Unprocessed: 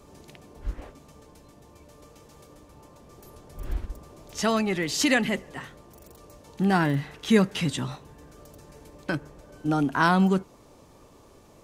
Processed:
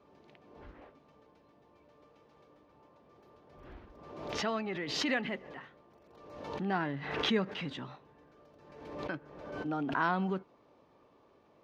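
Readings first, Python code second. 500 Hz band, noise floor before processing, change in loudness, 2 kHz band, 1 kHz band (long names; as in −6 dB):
−8.5 dB, −54 dBFS, −9.5 dB, −8.0 dB, −8.0 dB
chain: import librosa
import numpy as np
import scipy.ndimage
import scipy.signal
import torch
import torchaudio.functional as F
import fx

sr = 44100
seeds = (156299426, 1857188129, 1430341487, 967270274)

y = fx.highpass(x, sr, hz=340.0, slope=6)
y = fx.air_absorb(y, sr, metres=280.0)
y = fx.pre_swell(y, sr, db_per_s=48.0)
y = y * librosa.db_to_amplitude(-7.0)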